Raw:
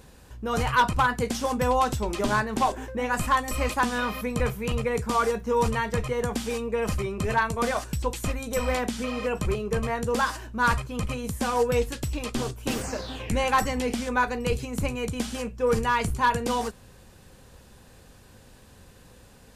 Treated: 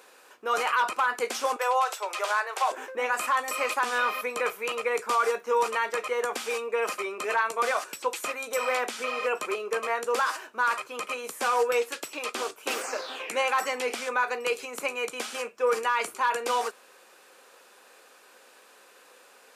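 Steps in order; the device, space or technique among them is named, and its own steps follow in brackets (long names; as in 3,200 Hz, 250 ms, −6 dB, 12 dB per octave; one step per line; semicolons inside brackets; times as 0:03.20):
0:01.56–0:02.71: inverse Chebyshev high-pass filter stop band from 250 Hz, stop band 40 dB
laptop speaker (high-pass filter 390 Hz 24 dB per octave; parametric band 1,300 Hz +7 dB 0.51 octaves; parametric band 2,400 Hz +5.5 dB 0.36 octaves; brickwall limiter −15.5 dBFS, peak gain reduction 8.5 dB)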